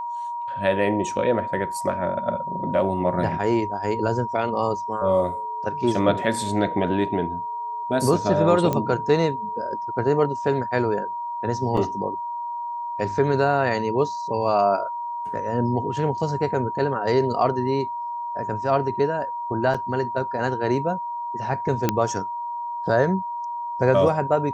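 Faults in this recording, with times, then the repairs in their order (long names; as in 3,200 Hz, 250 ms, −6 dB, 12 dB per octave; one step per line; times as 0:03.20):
whistle 950 Hz −27 dBFS
0:08.73: click −11 dBFS
0:11.77: drop-out 3.5 ms
0:19.74–0:19.75: drop-out 5.1 ms
0:21.89: click −5 dBFS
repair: click removal
notch filter 950 Hz, Q 30
repair the gap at 0:11.77, 3.5 ms
repair the gap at 0:19.74, 5.1 ms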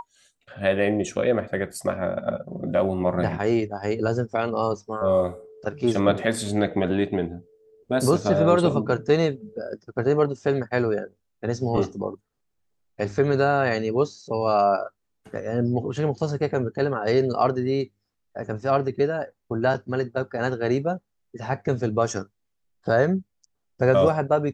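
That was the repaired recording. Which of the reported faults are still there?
none of them is left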